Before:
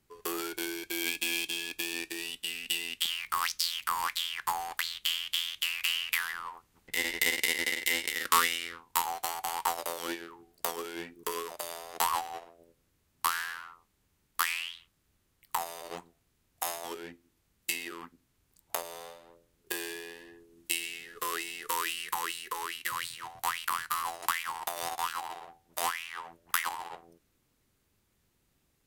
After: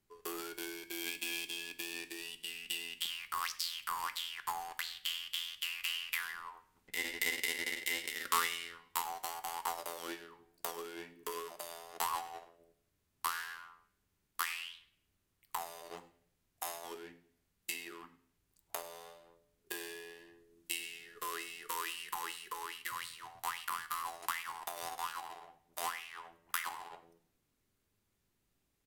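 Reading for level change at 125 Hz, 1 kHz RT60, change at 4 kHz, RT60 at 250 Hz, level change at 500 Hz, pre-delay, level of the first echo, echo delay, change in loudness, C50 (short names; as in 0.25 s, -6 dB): -7.5 dB, 0.60 s, -7.0 dB, 0.75 s, -6.5 dB, 3 ms, -21.5 dB, 0.1 s, -7.0 dB, 15.0 dB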